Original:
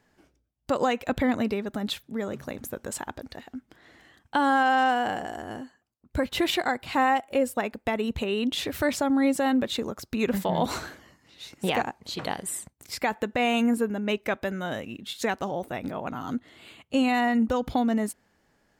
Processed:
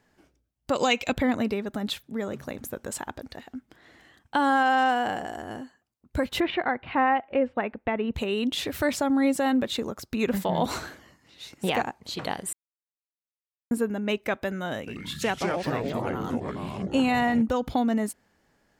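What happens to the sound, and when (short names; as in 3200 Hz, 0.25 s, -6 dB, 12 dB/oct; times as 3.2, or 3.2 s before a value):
0.75–1.13 spectral gain 2100–7900 Hz +10 dB
6.4–8.14 LPF 2700 Hz 24 dB/oct
12.53–13.71 mute
14.79–17.42 echoes that change speed 83 ms, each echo -4 st, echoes 3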